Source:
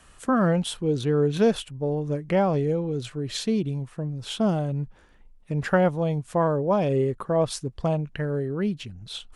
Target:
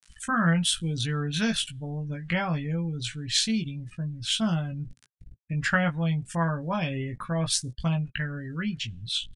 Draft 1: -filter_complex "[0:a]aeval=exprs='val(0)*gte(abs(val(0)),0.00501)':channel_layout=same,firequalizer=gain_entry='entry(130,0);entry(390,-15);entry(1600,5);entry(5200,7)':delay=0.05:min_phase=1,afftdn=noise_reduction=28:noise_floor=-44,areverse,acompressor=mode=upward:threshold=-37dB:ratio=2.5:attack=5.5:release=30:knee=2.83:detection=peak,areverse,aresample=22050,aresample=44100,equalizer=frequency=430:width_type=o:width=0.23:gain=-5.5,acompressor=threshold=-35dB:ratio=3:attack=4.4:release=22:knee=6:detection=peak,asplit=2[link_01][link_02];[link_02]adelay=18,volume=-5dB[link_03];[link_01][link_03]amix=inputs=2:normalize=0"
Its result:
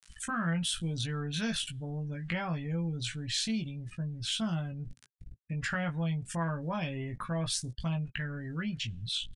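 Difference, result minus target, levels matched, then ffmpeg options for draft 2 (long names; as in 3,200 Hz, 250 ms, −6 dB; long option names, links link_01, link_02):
downward compressor: peak gain reduction +11.5 dB
-filter_complex "[0:a]aeval=exprs='val(0)*gte(abs(val(0)),0.00501)':channel_layout=same,firequalizer=gain_entry='entry(130,0);entry(390,-15);entry(1600,5);entry(5200,7)':delay=0.05:min_phase=1,afftdn=noise_reduction=28:noise_floor=-44,areverse,acompressor=mode=upward:threshold=-37dB:ratio=2.5:attack=5.5:release=30:knee=2.83:detection=peak,areverse,aresample=22050,aresample=44100,equalizer=frequency=430:width_type=o:width=0.23:gain=-5.5,asplit=2[link_01][link_02];[link_02]adelay=18,volume=-5dB[link_03];[link_01][link_03]amix=inputs=2:normalize=0"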